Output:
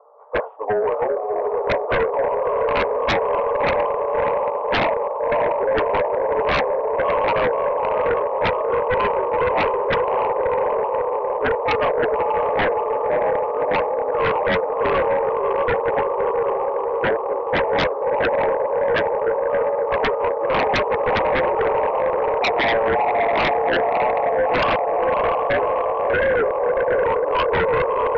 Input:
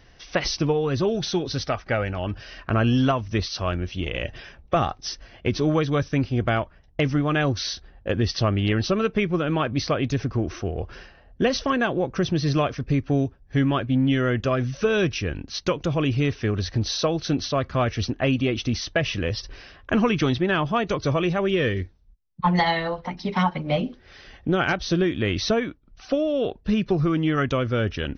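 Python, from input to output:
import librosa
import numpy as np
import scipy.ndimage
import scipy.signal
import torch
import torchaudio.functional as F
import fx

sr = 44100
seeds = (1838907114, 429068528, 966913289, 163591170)

p1 = fx.partial_stretch(x, sr, pct=84)
p2 = scipy.signal.sosfilt(scipy.signal.cheby1(4, 1.0, [450.0, 1100.0], 'bandpass', fs=sr, output='sos'), p1)
p3 = p2 + fx.echo_diffused(p2, sr, ms=622, feedback_pct=74, wet_db=-4.0, dry=0)
p4 = fx.fold_sine(p3, sr, drive_db=14, ceiling_db=-12.0)
y = F.gain(torch.from_numpy(p4), -3.0).numpy()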